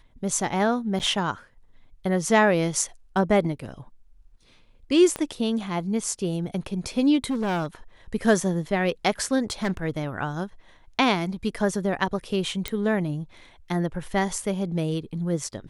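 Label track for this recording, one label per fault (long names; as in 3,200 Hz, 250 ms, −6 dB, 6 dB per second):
0.990000	1.000000	drop-out 8.3 ms
5.160000	5.160000	click −15 dBFS
7.300000	7.660000	clipping −22 dBFS
9.420000	9.770000	clipping −21 dBFS
12.680000	12.680000	click −11 dBFS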